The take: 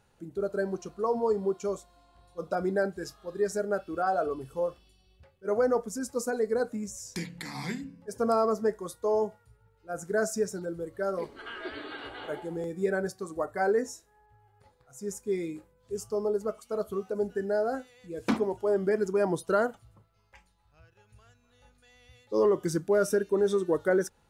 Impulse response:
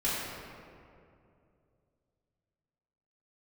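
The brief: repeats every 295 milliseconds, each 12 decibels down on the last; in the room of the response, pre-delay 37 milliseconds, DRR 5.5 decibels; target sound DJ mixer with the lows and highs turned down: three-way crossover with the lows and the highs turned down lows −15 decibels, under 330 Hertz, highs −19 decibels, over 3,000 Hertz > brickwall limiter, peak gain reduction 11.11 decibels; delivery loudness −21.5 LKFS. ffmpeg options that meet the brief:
-filter_complex "[0:a]aecho=1:1:295|590|885:0.251|0.0628|0.0157,asplit=2[link_01][link_02];[1:a]atrim=start_sample=2205,adelay=37[link_03];[link_02][link_03]afir=irnorm=-1:irlink=0,volume=-15dB[link_04];[link_01][link_04]amix=inputs=2:normalize=0,acrossover=split=330 3000:gain=0.178 1 0.112[link_05][link_06][link_07];[link_05][link_06][link_07]amix=inputs=3:normalize=0,volume=14dB,alimiter=limit=-11.5dB:level=0:latency=1"

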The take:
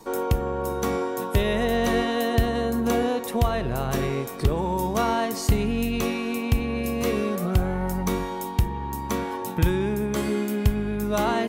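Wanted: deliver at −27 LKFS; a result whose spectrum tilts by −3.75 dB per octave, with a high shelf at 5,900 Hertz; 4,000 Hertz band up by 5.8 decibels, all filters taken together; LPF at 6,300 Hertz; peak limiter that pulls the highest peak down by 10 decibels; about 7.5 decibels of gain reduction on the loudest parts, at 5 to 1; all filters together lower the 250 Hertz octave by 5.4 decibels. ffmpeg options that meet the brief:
ffmpeg -i in.wav -af "lowpass=6300,equalizer=frequency=250:width_type=o:gain=-7,equalizer=frequency=4000:width_type=o:gain=9,highshelf=frequency=5900:gain=-3.5,acompressor=threshold=-25dB:ratio=5,volume=4dB,alimiter=limit=-17dB:level=0:latency=1" out.wav

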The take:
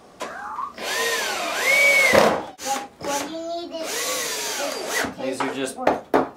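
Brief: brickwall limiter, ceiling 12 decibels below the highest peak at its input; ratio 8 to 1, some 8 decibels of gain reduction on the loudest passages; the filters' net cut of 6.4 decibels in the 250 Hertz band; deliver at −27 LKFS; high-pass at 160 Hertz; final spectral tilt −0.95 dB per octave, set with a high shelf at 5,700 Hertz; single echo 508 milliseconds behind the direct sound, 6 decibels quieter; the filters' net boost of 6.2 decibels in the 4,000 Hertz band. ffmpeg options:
ffmpeg -i in.wav -af "highpass=160,equalizer=frequency=250:width_type=o:gain=-7.5,equalizer=frequency=4000:width_type=o:gain=5,highshelf=frequency=5700:gain=7,acompressor=threshold=-19dB:ratio=8,alimiter=limit=-16.5dB:level=0:latency=1,aecho=1:1:508:0.501,volume=-2dB" out.wav

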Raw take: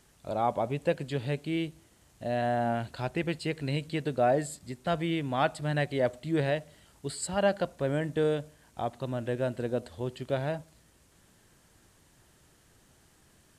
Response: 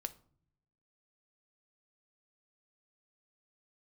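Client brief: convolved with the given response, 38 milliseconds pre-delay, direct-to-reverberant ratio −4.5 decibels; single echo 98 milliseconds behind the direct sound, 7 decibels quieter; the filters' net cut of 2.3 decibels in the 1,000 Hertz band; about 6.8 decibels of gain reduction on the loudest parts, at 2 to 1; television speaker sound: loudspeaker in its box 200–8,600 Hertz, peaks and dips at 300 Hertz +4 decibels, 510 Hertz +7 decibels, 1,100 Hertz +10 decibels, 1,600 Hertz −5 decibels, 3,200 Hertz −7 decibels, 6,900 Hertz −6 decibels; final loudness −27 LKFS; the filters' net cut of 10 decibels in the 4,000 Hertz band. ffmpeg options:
-filter_complex "[0:a]equalizer=frequency=1000:width_type=o:gain=-7,equalizer=frequency=4000:width_type=o:gain=-8,acompressor=threshold=-36dB:ratio=2,aecho=1:1:98:0.447,asplit=2[link_01][link_02];[1:a]atrim=start_sample=2205,adelay=38[link_03];[link_02][link_03]afir=irnorm=-1:irlink=0,volume=6.5dB[link_04];[link_01][link_04]amix=inputs=2:normalize=0,highpass=frequency=200:width=0.5412,highpass=frequency=200:width=1.3066,equalizer=frequency=300:width_type=q:width=4:gain=4,equalizer=frequency=510:width_type=q:width=4:gain=7,equalizer=frequency=1100:width_type=q:width=4:gain=10,equalizer=frequency=1600:width_type=q:width=4:gain=-5,equalizer=frequency=3200:width_type=q:width=4:gain=-7,equalizer=frequency=6900:width_type=q:width=4:gain=-6,lowpass=frequency=8600:width=0.5412,lowpass=frequency=8600:width=1.3066,volume=2dB"

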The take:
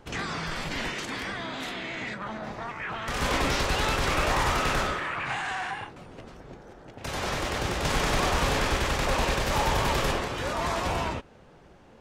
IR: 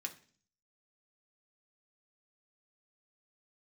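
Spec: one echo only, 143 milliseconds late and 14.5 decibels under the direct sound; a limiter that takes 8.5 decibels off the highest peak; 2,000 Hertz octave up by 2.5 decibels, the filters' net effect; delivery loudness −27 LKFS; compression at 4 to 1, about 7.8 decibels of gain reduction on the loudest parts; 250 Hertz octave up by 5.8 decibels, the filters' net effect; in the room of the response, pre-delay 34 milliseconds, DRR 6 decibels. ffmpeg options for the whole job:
-filter_complex "[0:a]equalizer=frequency=250:width_type=o:gain=7.5,equalizer=frequency=2000:width_type=o:gain=3,acompressor=threshold=-29dB:ratio=4,alimiter=level_in=3.5dB:limit=-24dB:level=0:latency=1,volume=-3.5dB,aecho=1:1:143:0.188,asplit=2[link_01][link_02];[1:a]atrim=start_sample=2205,adelay=34[link_03];[link_02][link_03]afir=irnorm=-1:irlink=0,volume=-4.5dB[link_04];[link_01][link_04]amix=inputs=2:normalize=0,volume=8dB"

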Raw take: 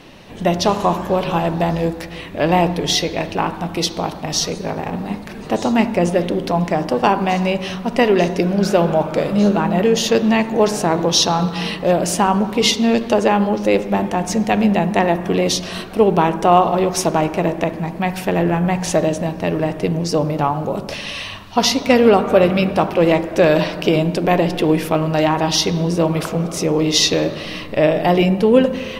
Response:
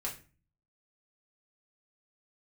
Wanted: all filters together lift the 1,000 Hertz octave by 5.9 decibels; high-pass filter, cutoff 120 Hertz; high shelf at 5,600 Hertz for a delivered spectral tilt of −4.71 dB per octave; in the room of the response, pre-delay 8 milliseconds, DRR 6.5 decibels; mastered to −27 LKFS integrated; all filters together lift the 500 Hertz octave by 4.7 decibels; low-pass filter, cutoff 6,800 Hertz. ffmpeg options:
-filter_complex "[0:a]highpass=120,lowpass=6800,equalizer=frequency=500:width_type=o:gain=4,equalizer=frequency=1000:width_type=o:gain=6.5,highshelf=frequency=5600:gain=-8,asplit=2[link_01][link_02];[1:a]atrim=start_sample=2205,adelay=8[link_03];[link_02][link_03]afir=irnorm=-1:irlink=0,volume=-8dB[link_04];[link_01][link_04]amix=inputs=2:normalize=0,volume=-14dB"

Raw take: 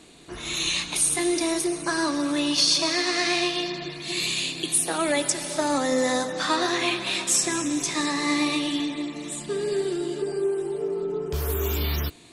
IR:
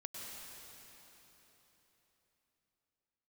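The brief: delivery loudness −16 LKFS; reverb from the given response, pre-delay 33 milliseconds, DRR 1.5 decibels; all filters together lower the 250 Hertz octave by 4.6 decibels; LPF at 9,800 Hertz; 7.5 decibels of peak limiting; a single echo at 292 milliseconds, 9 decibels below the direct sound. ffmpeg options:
-filter_complex "[0:a]lowpass=9800,equalizer=frequency=250:width_type=o:gain=-6.5,alimiter=limit=-17dB:level=0:latency=1,aecho=1:1:292:0.355,asplit=2[link_01][link_02];[1:a]atrim=start_sample=2205,adelay=33[link_03];[link_02][link_03]afir=irnorm=-1:irlink=0,volume=0dB[link_04];[link_01][link_04]amix=inputs=2:normalize=0,volume=8.5dB"

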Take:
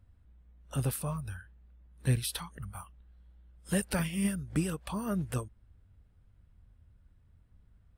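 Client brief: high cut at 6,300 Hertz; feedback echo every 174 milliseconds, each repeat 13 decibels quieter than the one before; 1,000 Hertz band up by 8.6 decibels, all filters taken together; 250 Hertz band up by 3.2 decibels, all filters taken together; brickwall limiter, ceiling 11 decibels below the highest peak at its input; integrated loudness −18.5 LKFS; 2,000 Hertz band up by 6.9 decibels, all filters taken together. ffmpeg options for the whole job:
ffmpeg -i in.wav -af "lowpass=6300,equalizer=frequency=250:width_type=o:gain=4.5,equalizer=frequency=1000:width_type=o:gain=8.5,equalizer=frequency=2000:width_type=o:gain=6,alimiter=level_in=1dB:limit=-24dB:level=0:latency=1,volume=-1dB,aecho=1:1:174|348|522:0.224|0.0493|0.0108,volume=17.5dB" out.wav

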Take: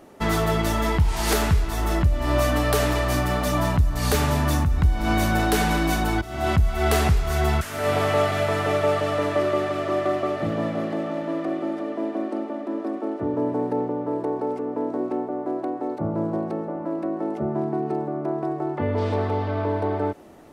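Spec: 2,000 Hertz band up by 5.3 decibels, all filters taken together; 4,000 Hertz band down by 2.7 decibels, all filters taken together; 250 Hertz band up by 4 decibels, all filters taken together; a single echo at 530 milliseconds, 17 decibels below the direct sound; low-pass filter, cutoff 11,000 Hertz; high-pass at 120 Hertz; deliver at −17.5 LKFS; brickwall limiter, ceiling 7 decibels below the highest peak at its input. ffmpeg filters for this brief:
ffmpeg -i in.wav -af "highpass=120,lowpass=11000,equalizer=frequency=250:width_type=o:gain=5.5,equalizer=frequency=2000:width_type=o:gain=8,equalizer=frequency=4000:width_type=o:gain=-7,alimiter=limit=-13.5dB:level=0:latency=1,aecho=1:1:530:0.141,volume=6.5dB" out.wav

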